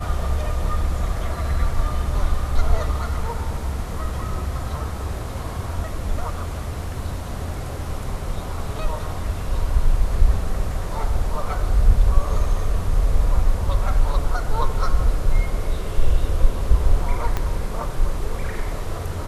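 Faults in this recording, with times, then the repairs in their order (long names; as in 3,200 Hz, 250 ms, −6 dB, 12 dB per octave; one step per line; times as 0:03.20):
0:17.37: click −10 dBFS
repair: click removal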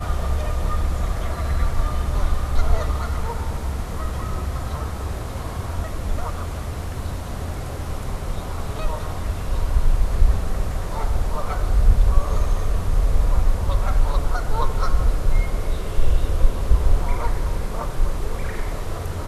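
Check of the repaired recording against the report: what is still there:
0:17.37: click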